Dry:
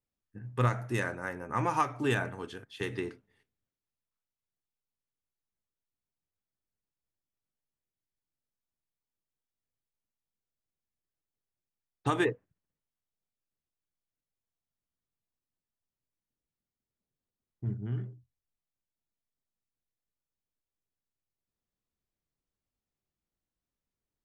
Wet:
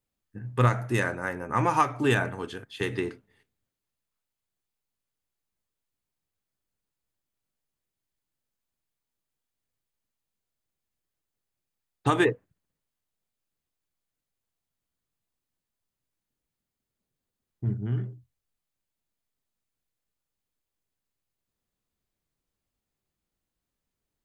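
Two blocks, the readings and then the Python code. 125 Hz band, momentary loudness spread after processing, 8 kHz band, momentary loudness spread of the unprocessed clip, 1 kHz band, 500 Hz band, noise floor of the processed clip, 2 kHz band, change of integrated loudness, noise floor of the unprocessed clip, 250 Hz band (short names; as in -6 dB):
+5.5 dB, 13 LU, +5.0 dB, 13 LU, +5.5 dB, +5.5 dB, under -85 dBFS, +5.5 dB, +5.5 dB, under -85 dBFS, +5.5 dB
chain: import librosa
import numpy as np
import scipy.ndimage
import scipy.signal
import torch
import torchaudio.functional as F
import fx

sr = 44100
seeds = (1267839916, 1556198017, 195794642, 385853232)

y = fx.notch(x, sr, hz=5600.0, q=17.0)
y = F.gain(torch.from_numpy(y), 5.5).numpy()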